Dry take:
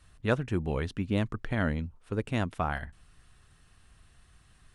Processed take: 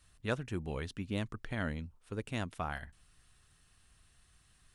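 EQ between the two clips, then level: treble shelf 2.9 kHz +8.5 dB; -8.0 dB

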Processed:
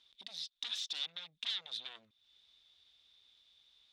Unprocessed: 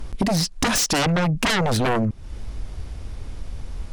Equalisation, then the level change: band-pass filter 3.6 kHz, Q 14; -1.0 dB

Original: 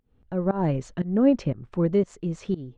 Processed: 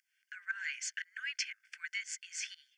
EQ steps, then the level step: rippled Chebyshev high-pass 1.5 kHz, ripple 6 dB; Butterworth band-stop 3.9 kHz, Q 4.8; +12.0 dB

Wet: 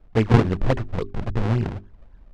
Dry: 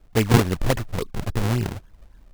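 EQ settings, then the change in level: tape spacing loss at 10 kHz 25 dB; hum notches 50/100/150/200/250/300/350/400 Hz; +2.0 dB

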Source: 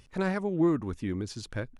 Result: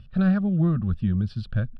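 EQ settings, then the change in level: distance through air 130 m; resonant low shelf 310 Hz +9.5 dB, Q 3; static phaser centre 1.4 kHz, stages 8; +3.5 dB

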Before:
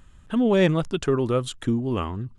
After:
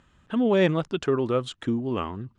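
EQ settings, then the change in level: high-pass 190 Hz 6 dB/octave; distance through air 84 m; 0.0 dB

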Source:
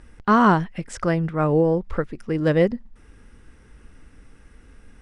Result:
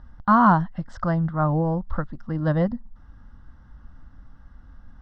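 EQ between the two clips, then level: low-pass 4.2 kHz 24 dB/octave; peaking EQ 2.9 kHz -3.5 dB 2.5 oct; static phaser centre 1 kHz, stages 4; +3.0 dB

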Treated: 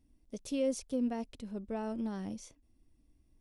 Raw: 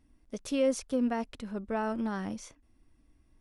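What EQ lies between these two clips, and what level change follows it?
peaking EQ 1.4 kHz -10.5 dB 1.5 oct; -3.0 dB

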